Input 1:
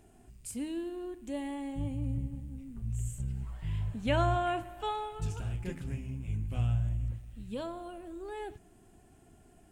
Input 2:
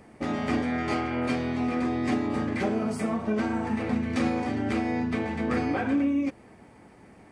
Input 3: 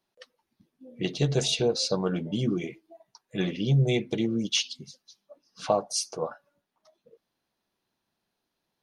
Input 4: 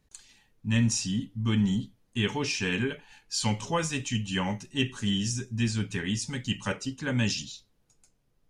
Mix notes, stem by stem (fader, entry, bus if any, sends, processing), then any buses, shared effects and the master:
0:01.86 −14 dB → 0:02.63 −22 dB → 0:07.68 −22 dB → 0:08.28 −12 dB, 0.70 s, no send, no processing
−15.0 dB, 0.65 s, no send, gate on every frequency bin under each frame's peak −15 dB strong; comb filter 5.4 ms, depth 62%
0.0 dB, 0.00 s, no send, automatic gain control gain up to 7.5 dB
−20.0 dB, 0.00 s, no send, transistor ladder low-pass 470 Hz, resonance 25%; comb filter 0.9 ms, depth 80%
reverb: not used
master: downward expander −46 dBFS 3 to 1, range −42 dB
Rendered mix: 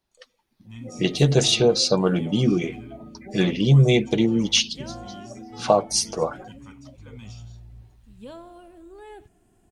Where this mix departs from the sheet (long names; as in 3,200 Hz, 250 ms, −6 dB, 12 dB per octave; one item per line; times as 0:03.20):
stem 1 −14.0 dB → −4.5 dB
stem 4: missing transistor ladder low-pass 470 Hz, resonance 25%
master: missing downward expander −46 dBFS 3 to 1, range −42 dB